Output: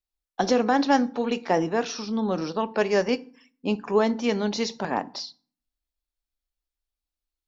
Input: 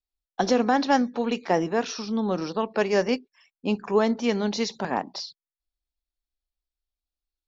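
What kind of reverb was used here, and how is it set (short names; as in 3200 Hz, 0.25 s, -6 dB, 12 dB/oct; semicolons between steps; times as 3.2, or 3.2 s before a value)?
FDN reverb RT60 0.46 s, low-frequency decay 1.45×, high-frequency decay 0.7×, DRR 15 dB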